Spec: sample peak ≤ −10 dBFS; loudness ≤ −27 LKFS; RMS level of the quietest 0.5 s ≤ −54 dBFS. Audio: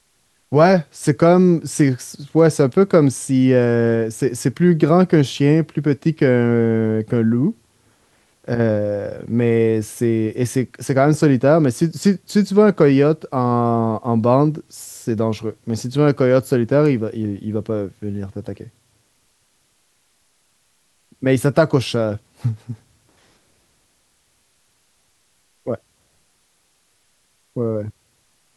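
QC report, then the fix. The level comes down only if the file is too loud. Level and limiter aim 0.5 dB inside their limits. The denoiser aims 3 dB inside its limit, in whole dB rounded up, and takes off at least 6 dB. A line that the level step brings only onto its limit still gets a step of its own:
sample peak −1.5 dBFS: out of spec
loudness −17.5 LKFS: out of spec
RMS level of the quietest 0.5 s −63 dBFS: in spec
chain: level −10 dB

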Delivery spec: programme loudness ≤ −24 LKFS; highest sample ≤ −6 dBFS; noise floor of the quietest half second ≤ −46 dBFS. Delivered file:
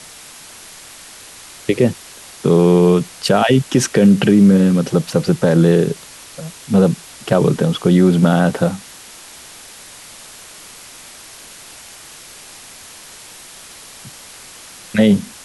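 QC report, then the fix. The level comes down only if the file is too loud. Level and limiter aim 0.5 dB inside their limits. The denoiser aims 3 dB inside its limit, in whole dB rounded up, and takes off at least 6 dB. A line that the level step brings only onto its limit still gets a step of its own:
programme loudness −14.5 LKFS: out of spec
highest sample −2.5 dBFS: out of spec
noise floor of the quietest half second −38 dBFS: out of spec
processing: level −10 dB

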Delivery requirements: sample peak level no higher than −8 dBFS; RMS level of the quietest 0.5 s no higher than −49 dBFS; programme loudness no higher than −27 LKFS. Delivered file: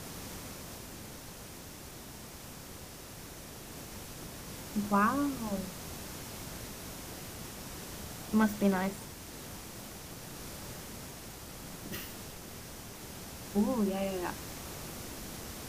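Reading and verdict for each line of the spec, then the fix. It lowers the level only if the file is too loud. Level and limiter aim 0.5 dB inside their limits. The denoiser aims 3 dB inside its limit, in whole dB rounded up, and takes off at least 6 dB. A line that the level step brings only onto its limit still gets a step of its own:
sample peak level −15.0 dBFS: in spec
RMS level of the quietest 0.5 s −47 dBFS: out of spec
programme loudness −37.5 LKFS: in spec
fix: broadband denoise 6 dB, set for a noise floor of −47 dBFS

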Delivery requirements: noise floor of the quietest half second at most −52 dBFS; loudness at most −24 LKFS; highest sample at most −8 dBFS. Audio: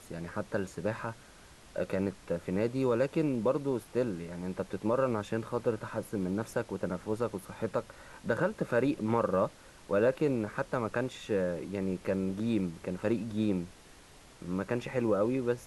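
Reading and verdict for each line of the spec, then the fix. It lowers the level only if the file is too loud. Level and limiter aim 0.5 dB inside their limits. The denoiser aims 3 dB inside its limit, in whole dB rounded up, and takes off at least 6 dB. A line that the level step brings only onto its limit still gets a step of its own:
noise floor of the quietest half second −55 dBFS: in spec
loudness −32.5 LKFS: in spec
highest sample −15.0 dBFS: in spec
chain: no processing needed

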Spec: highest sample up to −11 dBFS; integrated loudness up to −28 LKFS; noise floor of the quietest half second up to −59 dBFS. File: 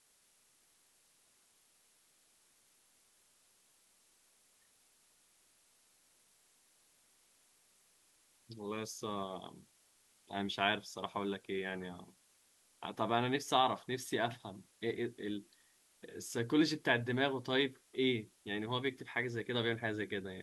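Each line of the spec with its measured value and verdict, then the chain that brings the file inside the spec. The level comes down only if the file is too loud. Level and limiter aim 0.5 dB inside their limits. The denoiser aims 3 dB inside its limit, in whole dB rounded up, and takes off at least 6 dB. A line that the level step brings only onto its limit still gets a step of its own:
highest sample −16.5 dBFS: in spec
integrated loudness −37.0 LKFS: in spec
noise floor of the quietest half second −71 dBFS: in spec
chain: no processing needed

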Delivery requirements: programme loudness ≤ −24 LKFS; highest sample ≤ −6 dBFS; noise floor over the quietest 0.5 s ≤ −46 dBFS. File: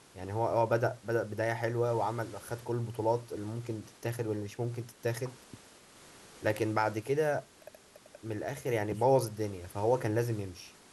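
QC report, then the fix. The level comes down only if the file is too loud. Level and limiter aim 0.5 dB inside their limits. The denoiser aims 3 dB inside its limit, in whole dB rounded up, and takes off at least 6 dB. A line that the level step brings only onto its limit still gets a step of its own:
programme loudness −33.0 LKFS: in spec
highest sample −13.5 dBFS: in spec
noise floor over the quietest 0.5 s −56 dBFS: in spec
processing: no processing needed

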